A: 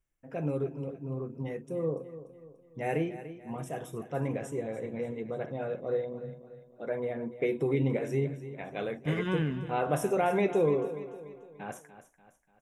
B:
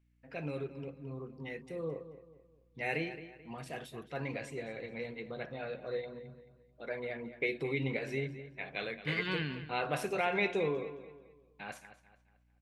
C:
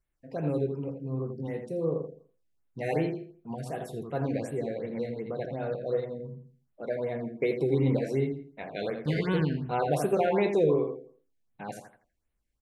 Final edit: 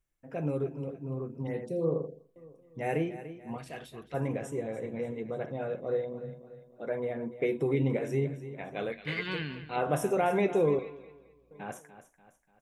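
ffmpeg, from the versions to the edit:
-filter_complex "[1:a]asplit=3[a][b][c];[0:a]asplit=5[d][e][f][g][h];[d]atrim=end=1.472[i];[2:a]atrim=start=1.468:end=2.362[j];[e]atrim=start=2.358:end=3.582[k];[a]atrim=start=3.578:end=4.142[l];[f]atrim=start=4.138:end=8.922[m];[b]atrim=start=8.918:end=9.762[n];[g]atrim=start=9.758:end=10.792[o];[c]atrim=start=10.788:end=11.512[p];[h]atrim=start=11.508[q];[i][j]acrossfade=d=0.004:c1=hsin:c2=hsin[r];[r][k]acrossfade=d=0.004:c1=hsin:c2=hsin[s];[s][l]acrossfade=d=0.004:c1=hsin:c2=hsin[t];[t][m]acrossfade=d=0.004:c1=hsin:c2=hsin[u];[u][n]acrossfade=d=0.004:c1=hsin:c2=hsin[v];[v][o]acrossfade=d=0.004:c1=hsin:c2=hsin[w];[w][p]acrossfade=d=0.004:c1=hsin:c2=hsin[x];[x][q]acrossfade=d=0.004:c1=hsin:c2=hsin"

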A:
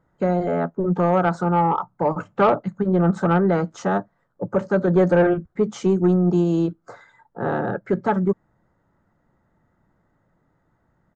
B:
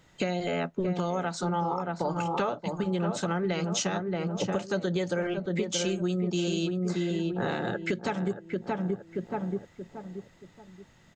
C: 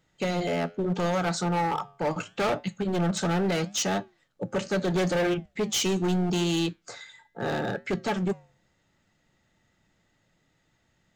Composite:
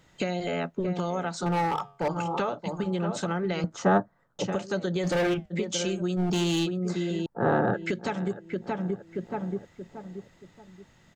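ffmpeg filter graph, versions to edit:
-filter_complex "[2:a]asplit=3[a][b][c];[0:a]asplit=2[d][e];[1:a]asplit=6[f][g][h][i][j][k];[f]atrim=end=1.462[l];[a]atrim=start=1.458:end=2.082[m];[g]atrim=start=2.078:end=3.642[n];[d]atrim=start=3.638:end=4.392[o];[h]atrim=start=4.388:end=5.07[p];[b]atrim=start=5.03:end=5.54[q];[i]atrim=start=5.5:end=6.2[r];[c]atrim=start=6.16:end=6.67[s];[j]atrim=start=6.63:end=7.262[t];[e]atrim=start=7.258:end=7.742[u];[k]atrim=start=7.738[v];[l][m]acrossfade=d=0.004:c1=hsin:c2=hsin[w];[w][n]acrossfade=d=0.004:c1=hsin:c2=hsin[x];[x][o]acrossfade=d=0.004:c1=hsin:c2=hsin[y];[y][p]acrossfade=d=0.004:c1=hsin:c2=hsin[z];[z][q]acrossfade=d=0.04:c1=tri:c2=tri[aa];[aa][r]acrossfade=d=0.04:c1=tri:c2=tri[ab];[ab][s]acrossfade=d=0.04:c1=tri:c2=tri[ac];[ac][t]acrossfade=d=0.04:c1=tri:c2=tri[ad];[ad][u]acrossfade=d=0.004:c1=hsin:c2=hsin[ae];[ae][v]acrossfade=d=0.004:c1=hsin:c2=hsin"

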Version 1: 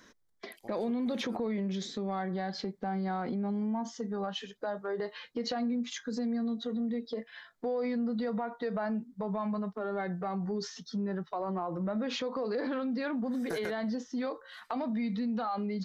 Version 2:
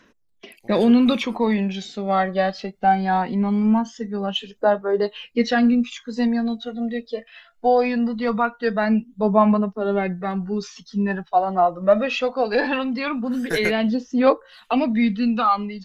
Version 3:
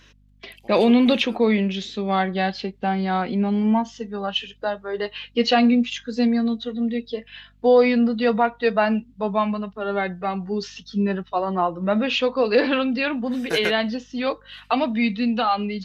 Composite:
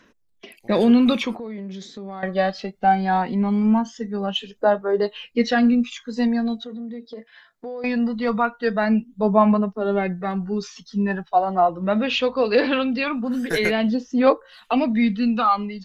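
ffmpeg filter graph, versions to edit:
-filter_complex "[0:a]asplit=2[a][b];[1:a]asplit=4[c][d][e][f];[c]atrim=end=1.352[g];[a]atrim=start=1.348:end=2.232[h];[d]atrim=start=2.228:end=6.642[i];[b]atrim=start=6.638:end=7.842[j];[e]atrim=start=7.838:end=11.692[k];[2:a]atrim=start=11.688:end=13.042[l];[f]atrim=start=13.038[m];[g][h]acrossfade=d=0.004:c1=hsin:c2=hsin[n];[n][i]acrossfade=d=0.004:c1=hsin:c2=hsin[o];[o][j]acrossfade=d=0.004:c1=hsin:c2=hsin[p];[p][k]acrossfade=d=0.004:c1=hsin:c2=hsin[q];[q][l]acrossfade=d=0.004:c1=hsin:c2=hsin[r];[r][m]acrossfade=d=0.004:c1=hsin:c2=hsin"

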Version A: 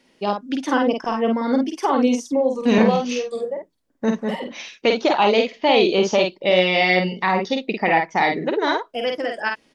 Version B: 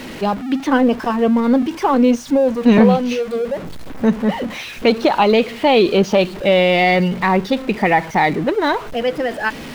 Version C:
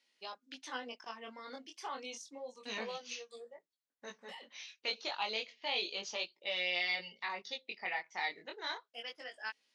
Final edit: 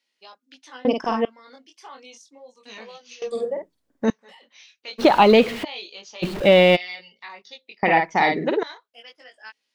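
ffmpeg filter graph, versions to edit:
-filter_complex "[0:a]asplit=3[a][b][c];[1:a]asplit=2[d][e];[2:a]asplit=6[f][g][h][i][j][k];[f]atrim=end=0.852[l];[a]atrim=start=0.848:end=1.252[m];[g]atrim=start=1.248:end=3.222[n];[b]atrim=start=3.218:end=4.102[o];[h]atrim=start=4.098:end=5[p];[d]atrim=start=4.98:end=5.65[q];[i]atrim=start=5.63:end=6.24[r];[e]atrim=start=6.22:end=6.77[s];[j]atrim=start=6.75:end=7.832[t];[c]atrim=start=7.828:end=8.632[u];[k]atrim=start=8.628[v];[l][m]acrossfade=d=0.004:c1=hsin:c2=hsin[w];[w][n]acrossfade=d=0.004:c1=hsin:c2=hsin[x];[x][o]acrossfade=d=0.004:c1=hsin:c2=hsin[y];[y][p]acrossfade=d=0.004:c1=hsin:c2=hsin[z];[z][q]acrossfade=d=0.02:c1=tri:c2=tri[aa];[aa][r]acrossfade=d=0.02:c1=tri:c2=tri[ab];[ab][s]acrossfade=d=0.02:c1=tri:c2=tri[ac];[ac][t]acrossfade=d=0.02:c1=tri:c2=tri[ad];[ad][u]acrossfade=d=0.004:c1=hsin:c2=hsin[ae];[ae][v]acrossfade=d=0.004:c1=hsin:c2=hsin"

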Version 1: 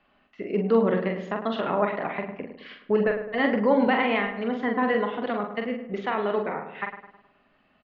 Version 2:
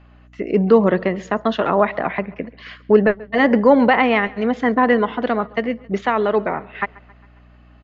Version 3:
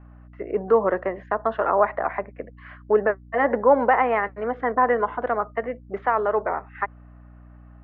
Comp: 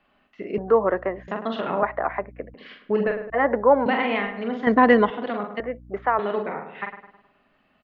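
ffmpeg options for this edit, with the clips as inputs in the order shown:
-filter_complex "[2:a]asplit=4[a][b][c][d];[0:a]asplit=6[e][f][g][h][i][j];[e]atrim=end=0.582[k];[a]atrim=start=0.578:end=1.282[l];[f]atrim=start=1.278:end=1.832[m];[b]atrim=start=1.828:end=2.542[n];[g]atrim=start=2.538:end=3.302[o];[c]atrim=start=3.298:end=3.862[p];[h]atrim=start=3.858:end=4.672[q];[1:a]atrim=start=4.668:end=5.102[r];[i]atrim=start=5.098:end=5.602[s];[d]atrim=start=5.598:end=6.192[t];[j]atrim=start=6.188[u];[k][l]acrossfade=d=0.004:c1=hsin:c2=hsin[v];[v][m]acrossfade=d=0.004:c1=hsin:c2=hsin[w];[w][n]acrossfade=d=0.004:c1=hsin:c2=hsin[x];[x][o]acrossfade=d=0.004:c1=hsin:c2=hsin[y];[y][p]acrossfade=d=0.004:c1=hsin:c2=hsin[z];[z][q]acrossfade=d=0.004:c1=hsin:c2=hsin[aa];[aa][r]acrossfade=d=0.004:c1=hsin:c2=hsin[ab];[ab][s]acrossfade=d=0.004:c1=hsin:c2=hsin[ac];[ac][t]acrossfade=d=0.004:c1=hsin:c2=hsin[ad];[ad][u]acrossfade=d=0.004:c1=hsin:c2=hsin"

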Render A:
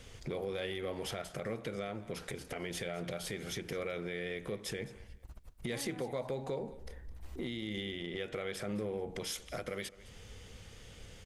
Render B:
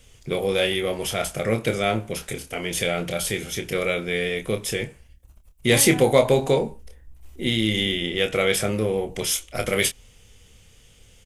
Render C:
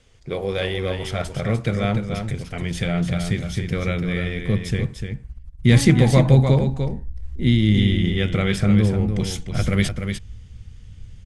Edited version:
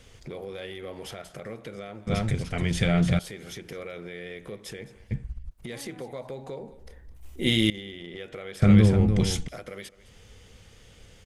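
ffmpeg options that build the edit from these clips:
-filter_complex "[2:a]asplit=3[a][b][c];[0:a]asplit=5[d][e][f][g][h];[d]atrim=end=2.072[i];[a]atrim=start=2.068:end=3.192[j];[e]atrim=start=3.188:end=5.112[k];[b]atrim=start=5.108:end=5.512[l];[f]atrim=start=5.508:end=7.162[m];[1:a]atrim=start=7.158:end=7.702[n];[g]atrim=start=7.698:end=8.622[o];[c]atrim=start=8.618:end=9.482[p];[h]atrim=start=9.478[q];[i][j]acrossfade=d=0.004:c1=hsin:c2=hsin[r];[r][k]acrossfade=d=0.004:c1=hsin:c2=hsin[s];[s][l]acrossfade=d=0.004:c1=hsin:c2=hsin[t];[t][m]acrossfade=d=0.004:c1=hsin:c2=hsin[u];[u][n]acrossfade=d=0.004:c1=hsin:c2=hsin[v];[v][o]acrossfade=d=0.004:c1=hsin:c2=hsin[w];[w][p]acrossfade=d=0.004:c1=hsin:c2=hsin[x];[x][q]acrossfade=d=0.004:c1=hsin:c2=hsin"

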